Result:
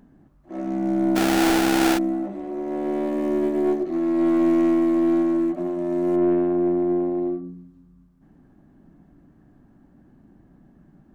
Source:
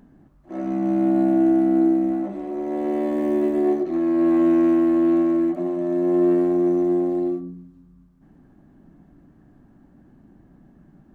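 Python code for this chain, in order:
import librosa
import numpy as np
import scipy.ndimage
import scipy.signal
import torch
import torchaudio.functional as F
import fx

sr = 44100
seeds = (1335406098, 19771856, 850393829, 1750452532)

y = fx.tracing_dist(x, sr, depth_ms=0.11)
y = fx.sample_hold(y, sr, seeds[0], rate_hz=1100.0, jitter_pct=20, at=(1.15, 1.97), fade=0.02)
y = fx.bessel_lowpass(y, sr, hz=2300.0, order=4, at=(6.15, 7.43), fade=0.02)
y = F.gain(torch.from_numpy(y), -1.5).numpy()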